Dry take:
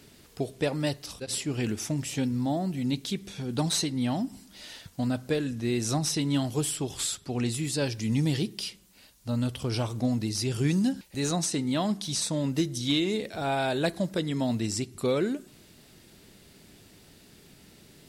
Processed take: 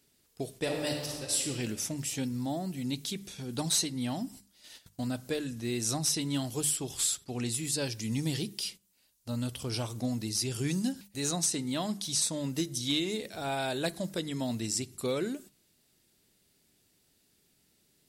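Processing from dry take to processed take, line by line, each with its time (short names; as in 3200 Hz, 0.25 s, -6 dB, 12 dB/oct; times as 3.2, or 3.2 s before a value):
0.56–1.47 reverb throw, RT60 1.7 s, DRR 0.5 dB
whole clip: gate -43 dBFS, range -13 dB; high shelf 4900 Hz +10.5 dB; notches 50/100/150/200 Hz; gain -5.5 dB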